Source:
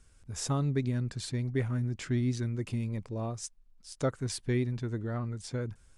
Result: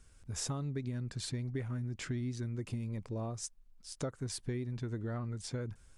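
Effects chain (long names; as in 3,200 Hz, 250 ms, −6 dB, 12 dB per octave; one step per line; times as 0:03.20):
0:02.30–0:04.70: dynamic equaliser 2,700 Hz, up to −3 dB, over −50 dBFS, Q 0.95
downward compressor, threshold −34 dBFS, peak gain reduction 10 dB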